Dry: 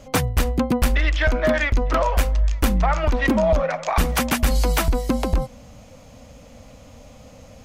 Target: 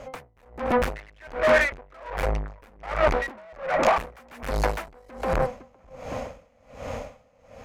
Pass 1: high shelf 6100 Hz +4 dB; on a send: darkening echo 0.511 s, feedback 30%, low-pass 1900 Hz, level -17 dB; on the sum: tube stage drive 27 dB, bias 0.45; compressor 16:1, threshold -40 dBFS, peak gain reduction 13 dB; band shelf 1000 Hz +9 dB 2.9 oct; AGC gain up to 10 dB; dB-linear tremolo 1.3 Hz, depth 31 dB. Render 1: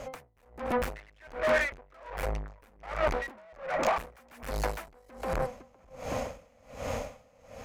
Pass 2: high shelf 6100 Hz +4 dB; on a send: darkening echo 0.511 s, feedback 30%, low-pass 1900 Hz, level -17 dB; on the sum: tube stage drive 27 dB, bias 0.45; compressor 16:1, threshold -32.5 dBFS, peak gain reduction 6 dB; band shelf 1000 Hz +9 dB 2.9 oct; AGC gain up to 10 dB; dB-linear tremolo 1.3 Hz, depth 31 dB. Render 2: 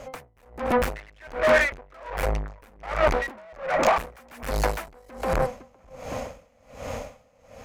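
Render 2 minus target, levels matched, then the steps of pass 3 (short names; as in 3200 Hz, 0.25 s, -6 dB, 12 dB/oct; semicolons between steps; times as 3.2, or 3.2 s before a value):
8000 Hz band +3.5 dB
high shelf 6100 Hz -5 dB; on a send: darkening echo 0.511 s, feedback 30%, low-pass 1900 Hz, level -17 dB; on the sum: tube stage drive 27 dB, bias 0.45; compressor 16:1, threshold -32.5 dBFS, peak gain reduction 6 dB; band shelf 1000 Hz +9 dB 2.9 oct; AGC gain up to 10 dB; dB-linear tremolo 1.3 Hz, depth 31 dB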